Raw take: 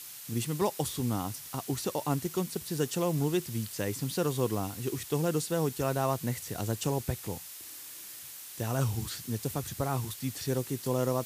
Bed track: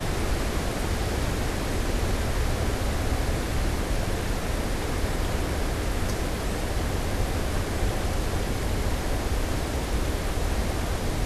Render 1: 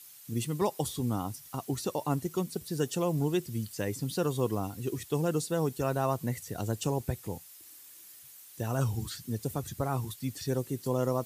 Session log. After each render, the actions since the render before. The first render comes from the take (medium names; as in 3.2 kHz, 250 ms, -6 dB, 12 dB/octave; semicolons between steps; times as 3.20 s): noise reduction 10 dB, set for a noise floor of -45 dBFS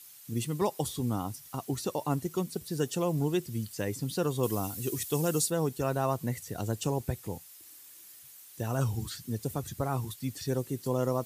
4.43–5.50 s: treble shelf 4.3 kHz +11.5 dB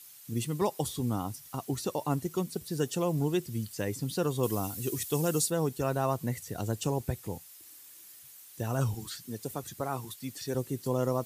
8.94–10.55 s: high-pass 280 Hz 6 dB/octave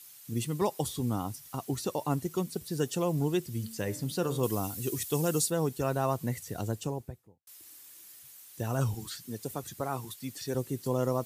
3.49–4.44 s: de-hum 74.99 Hz, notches 36; 6.52–7.47 s: studio fade out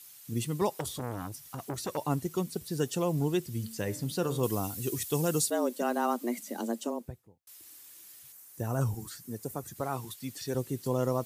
0.71–1.97 s: transformer saturation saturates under 1.3 kHz; 5.50–7.06 s: frequency shift +120 Hz; 8.32–9.76 s: peaking EQ 3.4 kHz -9.5 dB 1.2 oct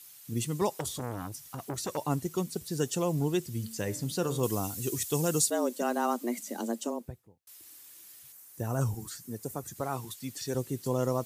dynamic bell 6.9 kHz, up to +5 dB, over -53 dBFS, Q 1.7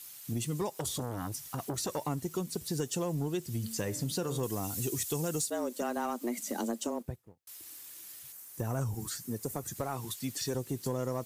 compression 6:1, threshold -33 dBFS, peak gain reduction 11 dB; waveshaping leveller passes 1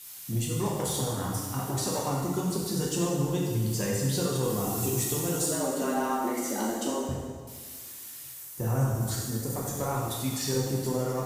plate-style reverb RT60 1.7 s, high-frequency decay 0.85×, DRR -4.5 dB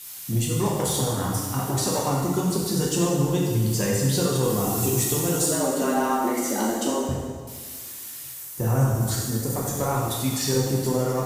trim +5.5 dB